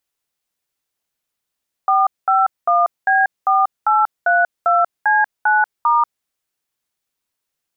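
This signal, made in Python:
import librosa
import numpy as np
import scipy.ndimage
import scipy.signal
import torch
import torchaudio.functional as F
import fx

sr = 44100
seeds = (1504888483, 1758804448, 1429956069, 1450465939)

y = fx.dtmf(sr, digits='451B4832C9*', tone_ms=188, gap_ms=209, level_db=-14.0)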